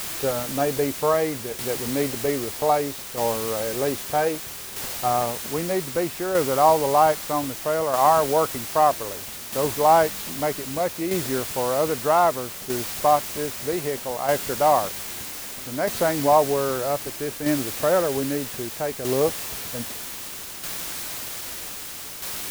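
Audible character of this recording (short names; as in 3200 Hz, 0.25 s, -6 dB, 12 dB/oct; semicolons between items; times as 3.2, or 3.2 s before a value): a quantiser's noise floor 6-bit, dither triangular; tremolo saw down 0.63 Hz, depth 50%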